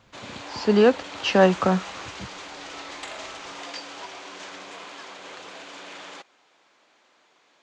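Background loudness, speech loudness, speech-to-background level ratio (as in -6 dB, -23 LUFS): -37.5 LUFS, -21.0 LUFS, 16.5 dB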